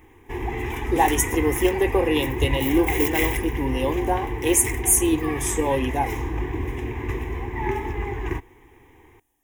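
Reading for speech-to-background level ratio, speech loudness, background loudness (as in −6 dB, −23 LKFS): 5.5 dB, −22.5 LKFS, −28.0 LKFS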